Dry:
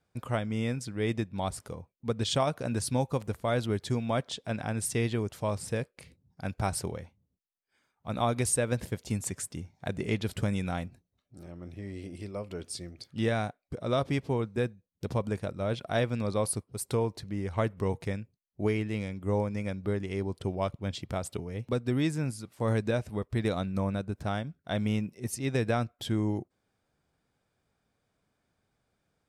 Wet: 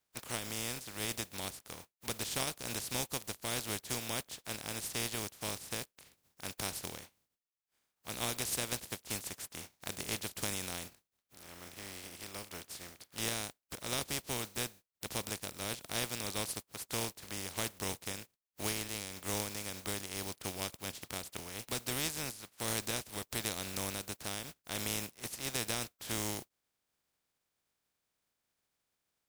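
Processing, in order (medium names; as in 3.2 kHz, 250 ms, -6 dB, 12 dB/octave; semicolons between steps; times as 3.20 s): spectral contrast reduction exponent 0.27; dynamic bell 1.4 kHz, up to -5 dB, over -41 dBFS, Q 0.71; trim -7 dB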